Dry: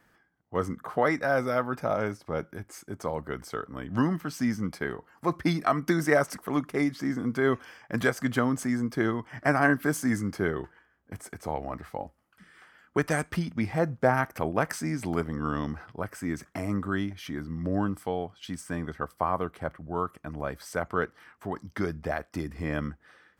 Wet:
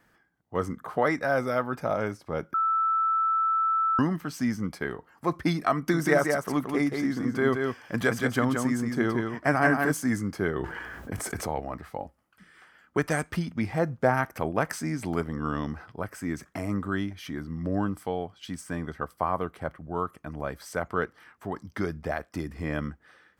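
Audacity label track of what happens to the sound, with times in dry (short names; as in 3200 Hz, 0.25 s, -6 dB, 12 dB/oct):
2.540000	3.990000	bleep 1320 Hz -21.5 dBFS
5.760000	9.920000	echo 0.175 s -4.5 dB
10.550000	11.600000	fast leveller amount 70%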